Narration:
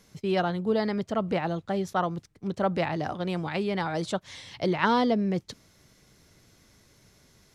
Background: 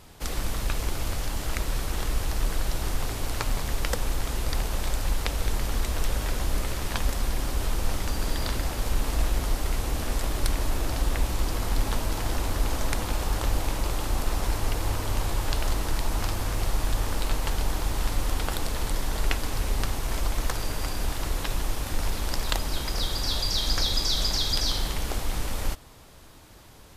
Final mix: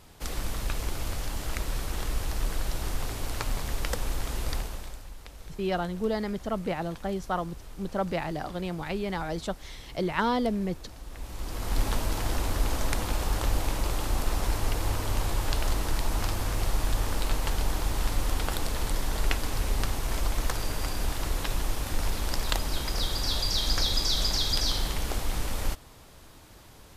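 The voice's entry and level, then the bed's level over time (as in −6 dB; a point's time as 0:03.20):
5.35 s, −3.0 dB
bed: 0:04.53 −3 dB
0:05.09 −18 dB
0:11.03 −18 dB
0:11.79 −1 dB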